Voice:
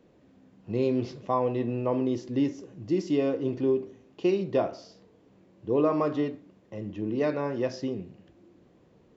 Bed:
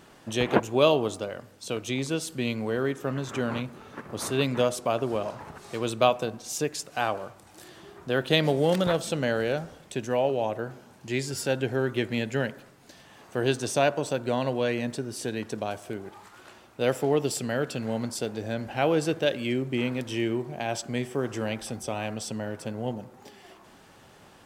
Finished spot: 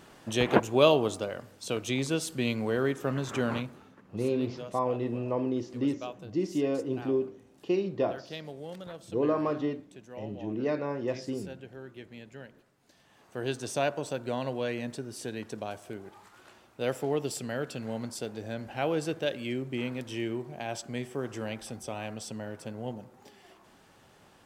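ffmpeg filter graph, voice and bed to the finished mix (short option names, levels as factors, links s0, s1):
-filter_complex "[0:a]adelay=3450,volume=0.708[s0];[1:a]volume=4.22,afade=t=out:st=3.52:d=0.44:silence=0.125893,afade=t=in:st=12.52:d=1.28:silence=0.223872[s1];[s0][s1]amix=inputs=2:normalize=0"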